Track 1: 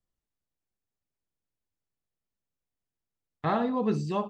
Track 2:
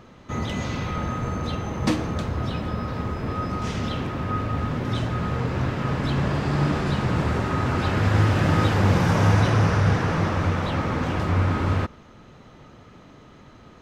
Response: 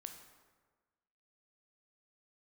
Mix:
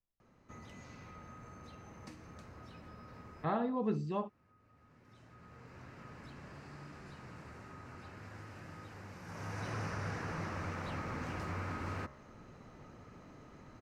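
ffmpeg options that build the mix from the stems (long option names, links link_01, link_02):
-filter_complex "[0:a]lowpass=frequency=2300:poles=1,volume=-6.5dB,asplit=2[link_01][link_02];[1:a]equalizer=frequency=3400:width=3:gain=-10.5,bandreject=frequency=67.99:width_type=h:width=4,bandreject=frequency=135.98:width_type=h:width=4,bandreject=frequency=203.97:width_type=h:width=4,bandreject=frequency=271.96:width_type=h:width=4,bandreject=frequency=339.95:width_type=h:width=4,bandreject=frequency=407.94:width_type=h:width=4,bandreject=frequency=475.93:width_type=h:width=4,bandreject=frequency=543.92:width_type=h:width=4,bandreject=frequency=611.91:width_type=h:width=4,bandreject=frequency=679.9:width_type=h:width=4,bandreject=frequency=747.89:width_type=h:width=4,bandreject=frequency=815.88:width_type=h:width=4,bandreject=frequency=883.87:width_type=h:width=4,bandreject=frequency=951.86:width_type=h:width=4,bandreject=frequency=1019.85:width_type=h:width=4,bandreject=frequency=1087.84:width_type=h:width=4,bandreject=frequency=1155.83:width_type=h:width=4,bandreject=frequency=1223.82:width_type=h:width=4,bandreject=frequency=1291.81:width_type=h:width=4,bandreject=frequency=1359.8:width_type=h:width=4,bandreject=frequency=1427.79:width_type=h:width=4,bandreject=frequency=1495.78:width_type=h:width=4,bandreject=frequency=1563.77:width_type=h:width=4,bandreject=frequency=1631.76:width_type=h:width=4,bandreject=frequency=1699.75:width_type=h:width=4,bandreject=frequency=1767.74:width_type=h:width=4,bandreject=frequency=1835.73:width_type=h:width=4,bandreject=frequency=1903.72:width_type=h:width=4,bandreject=frequency=1971.71:width_type=h:width=4,bandreject=frequency=2039.7:width_type=h:width=4,bandreject=frequency=2107.69:width_type=h:width=4,acrossover=split=190|1300[link_03][link_04][link_05];[link_03]acompressor=threshold=-38dB:ratio=4[link_06];[link_04]acompressor=threshold=-38dB:ratio=4[link_07];[link_05]acompressor=threshold=-39dB:ratio=4[link_08];[link_06][link_07][link_08]amix=inputs=3:normalize=0,adelay=200,volume=-6.5dB,afade=type=in:start_time=9.23:duration=0.5:silence=0.281838[link_09];[link_02]apad=whole_len=617918[link_10];[link_09][link_10]sidechaincompress=threshold=-53dB:ratio=8:attack=43:release=1150[link_11];[link_01][link_11]amix=inputs=2:normalize=0"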